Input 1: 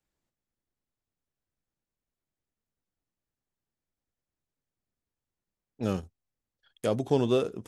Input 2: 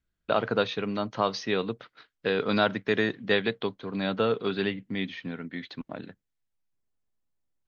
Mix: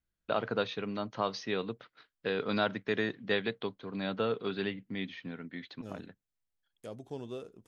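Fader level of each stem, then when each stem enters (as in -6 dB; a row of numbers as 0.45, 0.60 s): -16.5, -6.0 dB; 0.00, 0.00 s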